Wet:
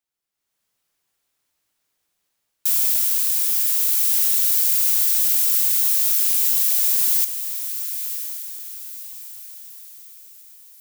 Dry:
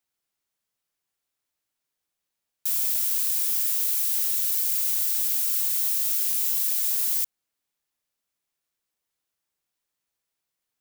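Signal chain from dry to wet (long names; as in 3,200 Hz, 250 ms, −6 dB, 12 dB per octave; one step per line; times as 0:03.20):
automatic gain control gain up to 13 dB
on a send: feedback delay with all-pass diffusion 1,047 ms, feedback 41%, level −9 dB
on the sum: level −4 dB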